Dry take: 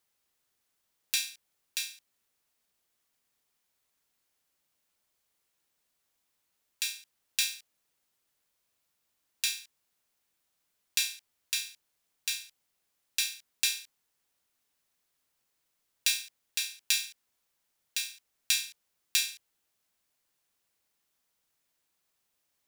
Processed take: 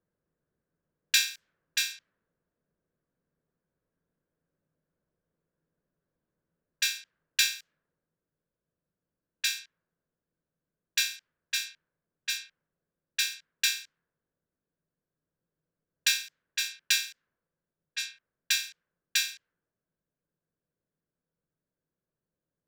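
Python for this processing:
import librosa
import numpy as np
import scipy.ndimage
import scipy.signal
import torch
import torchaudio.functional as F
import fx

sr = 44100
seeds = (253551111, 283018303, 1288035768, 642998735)

y = fx.rider(x, sr, range_db=10, speed_s=2.0)
y = fx.graphic_eq_31(y, sr, hz=(160, 500, 800, 1600, 10000), db=(11, 3, -9, 10, -11))
y = fx.env_lowpass(y, sr, base_hz=550.0, full_db=-31.5)
y = y * 10.0 ** (4.5 / 20.0)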